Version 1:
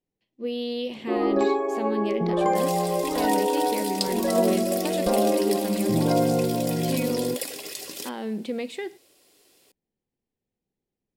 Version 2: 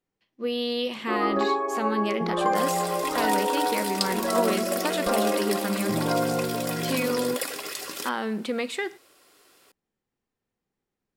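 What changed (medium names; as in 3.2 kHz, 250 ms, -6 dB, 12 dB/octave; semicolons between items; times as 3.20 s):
speech: add treble shelf 3.8 kHz +8.5 dB; first sound -5.5 dB; master: add peaking EQ 1.3 kHz +14 dB 0.98 oct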